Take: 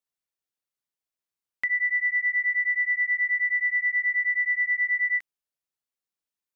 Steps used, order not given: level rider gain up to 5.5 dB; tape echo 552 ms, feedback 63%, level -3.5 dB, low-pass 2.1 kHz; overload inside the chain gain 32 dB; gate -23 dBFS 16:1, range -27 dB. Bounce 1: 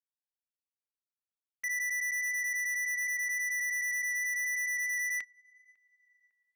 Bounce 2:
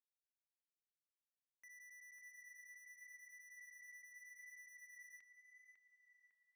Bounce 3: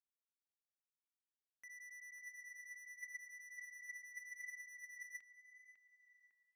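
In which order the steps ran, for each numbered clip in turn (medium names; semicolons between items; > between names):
tape echo > level rider > gate > overload inside the chain; level rider > overload inside the chain > gate > tape echo; overload inside the chain > tape echo > level rider > gate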